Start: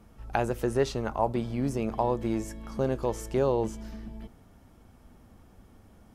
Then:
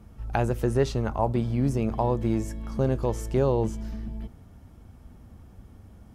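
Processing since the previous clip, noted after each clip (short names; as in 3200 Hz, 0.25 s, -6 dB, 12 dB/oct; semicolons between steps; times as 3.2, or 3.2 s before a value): bell 79 Hz +9.5 dB 2.6 oct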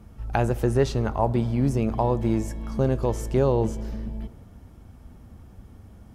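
reverb RT60 2.0 s, pre-delay 5 ms, DRR 18.5 dB; gain +2 dB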